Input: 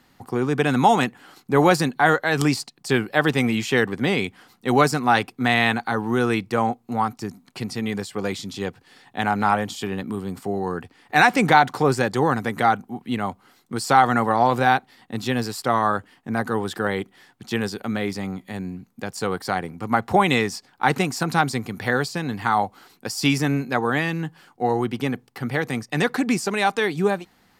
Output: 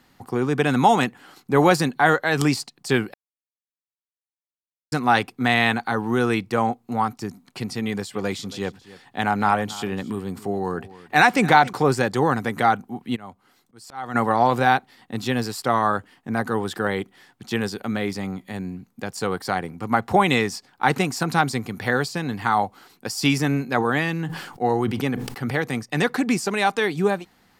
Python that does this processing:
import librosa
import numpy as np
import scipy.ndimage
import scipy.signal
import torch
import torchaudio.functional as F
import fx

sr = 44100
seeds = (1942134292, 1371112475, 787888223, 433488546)

y = fx.echo_single(x, sr, ms=278, db=-18.5, at=(7.86, 11.73))
y = fx.auto_swell(y, sr, attack_ms=707.0, at=(13.15, 14.14), fade=0.02)
y = fx.sustainer(y, sr, db_per_s=57.0, at=(23.74, 25.54))
y = fx.edit(y, sr, fx.silence(start_s=3.14, length_s=1.78), tone=tone)